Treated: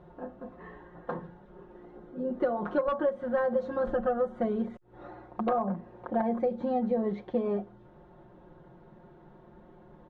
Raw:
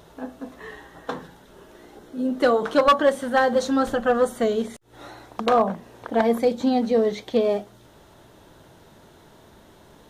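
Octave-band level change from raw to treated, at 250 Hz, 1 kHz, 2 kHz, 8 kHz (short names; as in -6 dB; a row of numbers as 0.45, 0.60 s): -7.5 dB, -10.0 dB, -13.5 dB, under -35 dB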